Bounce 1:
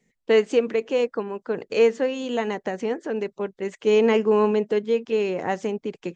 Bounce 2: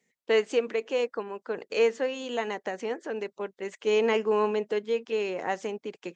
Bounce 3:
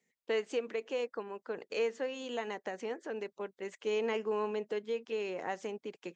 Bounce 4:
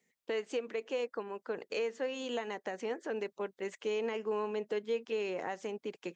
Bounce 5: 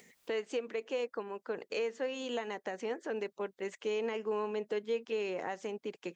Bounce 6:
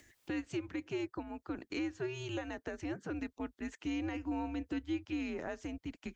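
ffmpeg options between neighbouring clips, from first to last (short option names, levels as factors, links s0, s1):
-af "highpass=f=510:p=1,volume=0.794"
-af "acompressor=threshold=0.0355:ratio=1.5,volume=0.531"
-af "alimiter=level_in=1.5:limit=0.0631:level=0:latency=1:release=381,volume=0.668,volume=1.33"
-af "acompressor=mode=upward:threshold=0.00447:ratio=2.5"
-af "afreqshift=-140,volume=0.75"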